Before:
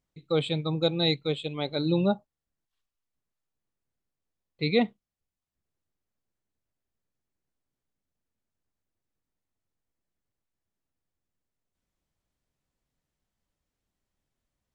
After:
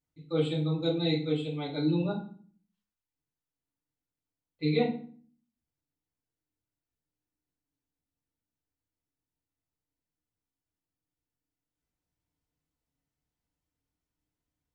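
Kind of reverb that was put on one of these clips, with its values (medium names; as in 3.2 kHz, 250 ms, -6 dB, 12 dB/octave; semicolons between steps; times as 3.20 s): FDN reverb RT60 0.45 s, low-frequency decay 1.55×, high-frequency decay 0.8×, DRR -7 dB; trim -13 dB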